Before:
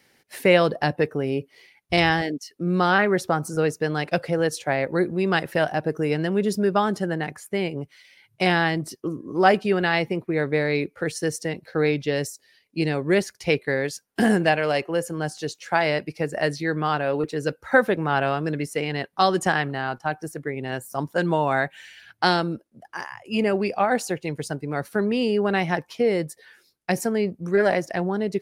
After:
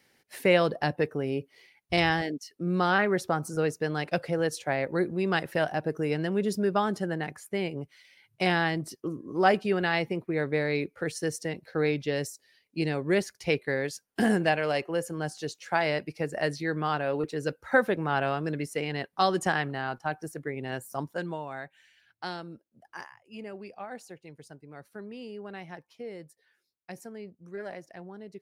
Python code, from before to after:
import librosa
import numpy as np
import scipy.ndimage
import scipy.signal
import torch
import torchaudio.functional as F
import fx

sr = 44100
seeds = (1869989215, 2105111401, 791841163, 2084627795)

y = fx.gain(x, sr, db=fx.line((20.95, -5.0), (21.48, -16.5), (22.45, -16.5), (23.0, -8.0), (23.21, -19.0)))